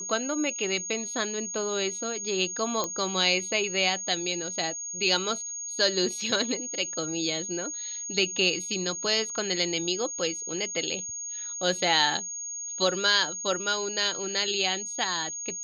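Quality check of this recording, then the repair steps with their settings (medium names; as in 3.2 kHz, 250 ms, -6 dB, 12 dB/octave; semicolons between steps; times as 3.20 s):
whine 6.6 kHz -33 dBFS
2.84 s: pop -14 dBFS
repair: de-click; band-stop 6.6 kHz, Q 30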